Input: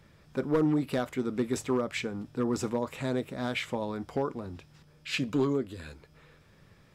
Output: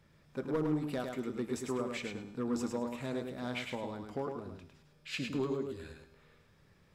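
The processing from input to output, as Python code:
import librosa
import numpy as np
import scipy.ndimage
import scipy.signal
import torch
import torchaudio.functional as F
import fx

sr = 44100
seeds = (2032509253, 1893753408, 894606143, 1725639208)

p1 = fx.comb_fb(x, sr, f0_hz=80.0, decay_s=1.1, harmonics='all', damping=0.0, mix_pct=50)
p2 = p1 + fx.echo_feedback(p1, sr, ms=105, feedback_pct=22, wet_db=-5, dry=0)
y = p2 * librosa.db_to_amplitude(-2.0)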